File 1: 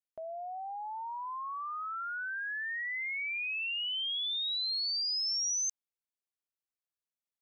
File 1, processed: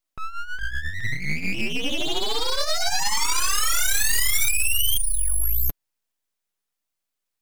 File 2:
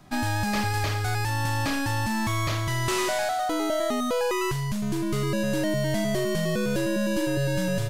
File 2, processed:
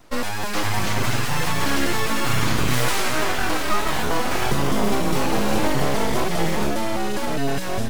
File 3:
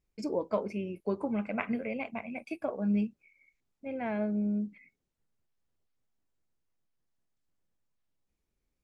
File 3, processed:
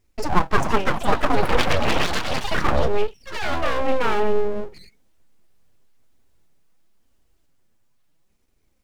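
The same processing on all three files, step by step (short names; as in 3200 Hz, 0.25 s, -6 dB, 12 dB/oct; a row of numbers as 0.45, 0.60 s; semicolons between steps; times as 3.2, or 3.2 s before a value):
flange 0.58 Hz, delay 2.8 ms, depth 6.4 ms, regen +12%; echoes that change speed 0.447 s, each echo +4 st, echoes 3; full-wave rectifier; match loudness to -23 LUFS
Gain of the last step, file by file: +16.0, +6.5, +17.5 dB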